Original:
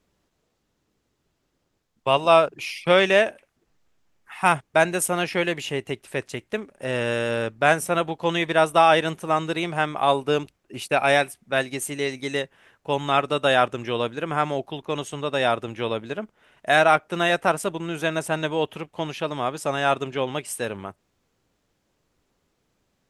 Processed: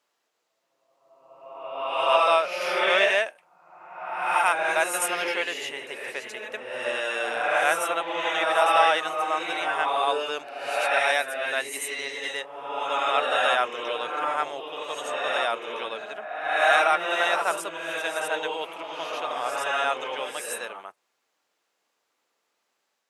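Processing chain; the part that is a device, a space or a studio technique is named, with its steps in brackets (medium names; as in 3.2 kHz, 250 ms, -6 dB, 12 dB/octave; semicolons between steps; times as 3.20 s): ghost voice (reverse; reverberation RT60 1.5 s, pre-delay 71 ms, DRR -1.5 dB; reverse; high-pass 730 Hz 12 dB/octave); trim -3 dB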